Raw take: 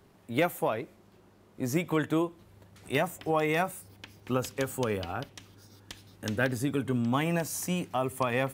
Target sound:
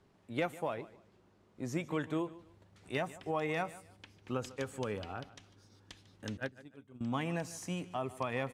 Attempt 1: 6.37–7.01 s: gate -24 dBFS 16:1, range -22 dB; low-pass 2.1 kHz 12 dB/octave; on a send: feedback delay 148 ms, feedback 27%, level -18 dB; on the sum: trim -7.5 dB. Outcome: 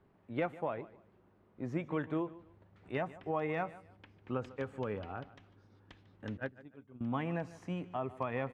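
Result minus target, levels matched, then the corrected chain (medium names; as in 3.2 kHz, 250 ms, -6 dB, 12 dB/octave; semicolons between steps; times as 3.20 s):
8 kHz band -19.0 dB
6.37–7.01 s: gate -24 dBFS 16:1, range -22 dB; low-pass 7.6 kHz 12 dB/octave; on a send: feedback delay 148 ms, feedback 27%, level -18 dB; on the sum: trim -7.5 dB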